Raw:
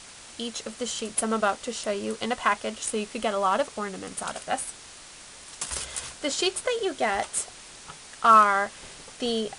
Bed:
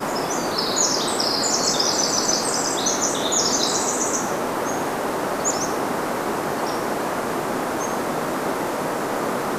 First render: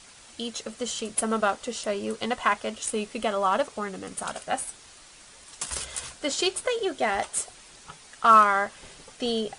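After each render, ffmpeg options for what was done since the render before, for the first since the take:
-af "afftdn=nr=6:nf=-46"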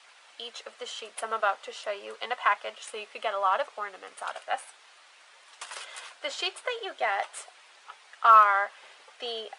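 -filter_complex "[0:a]highpass=330,acrossover=split=540 3800:gain=0.0891 1 0.178[a][b][c];[a][b][c]amix=inputs=3:normalize=0"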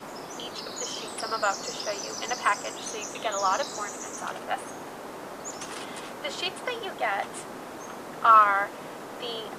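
-filter_complex "[1:a]volume=-15.5dB[a];[0:a][a]amix=inputs=2:normalize=0"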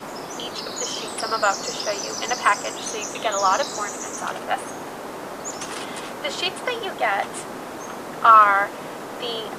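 -af "volume=6dB,alimiter=limit=-2dB:level=0:latency=1"

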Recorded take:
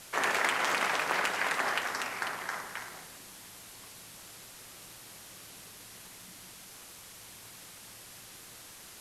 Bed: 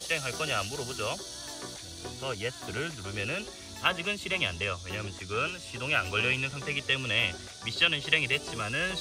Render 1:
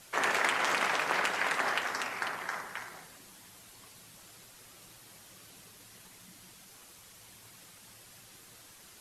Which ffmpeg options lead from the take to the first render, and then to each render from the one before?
-af "afftdn=nr=6:nf=-50"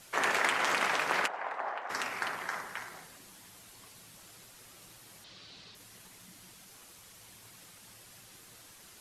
-filter_complex "[0:a]asplit=3[a][b][c];[a]afade=t=out:st=1.26:d=0.02[d];[b]bandpass=f=760:t=q:w=1.8,afade=t=in:st=1.26:d=0.02,afade=t=out:st=1.89:d=0.02[e];[c]afade=t=in:st=1.89:d=0.02[f];[d][e][f]amix=inputs=3:normalize=0,asettb=1/sr,asplit=3[g][h][i];[g]atrim=end=5.244[j];[h]atrim=start=5.24:end=5.75,asetpts=PTS-STARTPTS,afade=t=in:d=0.004:c=qsin,afade=t=out:st=0.506:d=0.004:c=qsin,lowpass=f=4.2k:t=q:w=2.9[k];[i]atrim=start=5.746[l];[j][k]acrossfade=d=0.004:c1=hsin:c2=qsin[m];[m][l]acrossfade=d=0.004:c1=qsin:c2=hsin"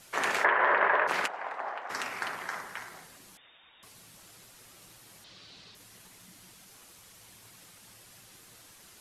-filter_complex "[0:a]asplit=3[a][b][c];[a]afade=t=out:st=0.43:d=0.02[d];[b]highpass=200,equalizer=f=250:t=q:w=4:g=-7,equalizer=f=400:t=q:w=4:g=9,equalizer=f=590:t=q:w=4:g=10,equalizer=f=1k:t=q:w=4:g=9,equalizer=f=1.7k:t=q:w=4:g=9,equalizer=f=2.4k:t=q:w=4:g=-4,lowpass=f=2.5k:w=0.5412,lowpass=f=2.5k:w=1.3066,afade=t=in:st=0.43:d=0.02,afade=t=out:st=1.07:d=0.02[e];[c]afade=t=in:st=1.07:d=0.02[f];[d][e][f]amix=inputs=3:normalize=0,asettb=1/sr,asplit=3[g][h][i];[g]atrim=end=3.374[j];[h]atrim=start=3.37:end=3.83,asetpts=PTS-STARTPTS,afade=t=in:d=0.004:c=qsin,afade=t=out:st=0.456:d=0.004:c=qsin,lowpass=f=3.2k:t=q:w=0.5098,lowpass=f=3.2k:t=q:w=0.6013,lowpass=f=3.2k:t=q:w=0.9,lowpass=f=3.2k:t=q:w=2.563,afreqshift=-3800[k];[i]atrim=start=3.826[l];[j][k]acrossfade=d=0.004:c1=hsin:c2=qsin[m];[m][l]acrossfade=d=0.004:c1=qsin:c2=hsin"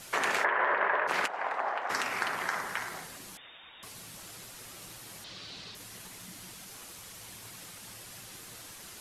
-filter_complex "[0:a]asplit=2[a][b];[b]alimiter=limit=-19.5dB:level=0:latency=1:release=278,volume=2dB[c];[a][c]amix=inputs=2:normalize=0,acompressor=threshold=-30dB:ratio=2"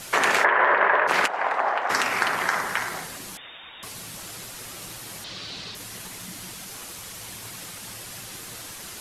-af "volume=8.5dB"

